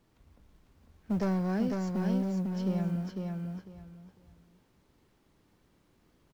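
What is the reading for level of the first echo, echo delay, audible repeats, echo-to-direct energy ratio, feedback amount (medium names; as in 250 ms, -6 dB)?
-4.0 dB, 500 ms, 3, -4.0 dB, 22%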